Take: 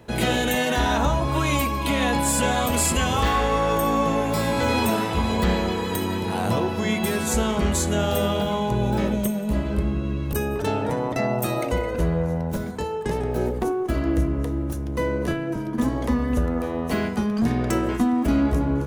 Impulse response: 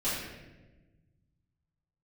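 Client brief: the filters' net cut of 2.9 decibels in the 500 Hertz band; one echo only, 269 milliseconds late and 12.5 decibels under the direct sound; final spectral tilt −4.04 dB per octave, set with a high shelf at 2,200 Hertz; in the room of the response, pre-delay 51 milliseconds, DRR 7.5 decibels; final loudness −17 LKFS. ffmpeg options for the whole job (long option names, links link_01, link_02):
-filter_complex "[0:a]equalizer=frequency=500:width_type=o:gain=-4,highshelf=frequency=2200:gain=6.5,aecho=1:1:269:0.237,asplit=2[link_01][link_02];[1:a]atrim=start_sample=2205,adelay=51[link_03];[link_02][link_03]afir=irnorm=-1:irlink=0,volume=-15.5dB[link_04];[link_01][link_04]amix=inputs=2:normalize=0,volume=4.5dB"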